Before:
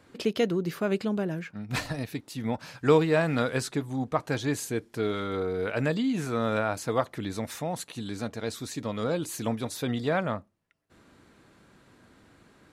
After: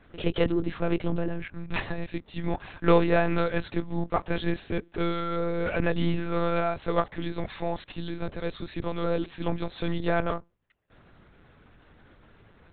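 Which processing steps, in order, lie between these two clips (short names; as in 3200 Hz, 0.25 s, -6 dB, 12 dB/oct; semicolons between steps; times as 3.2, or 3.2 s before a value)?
in parallel at -3.5 dB: one-sided clip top -26 dBFS; on the sum: monotone LPC vocoder at 8 kHz 170 Hz; gain -2 dB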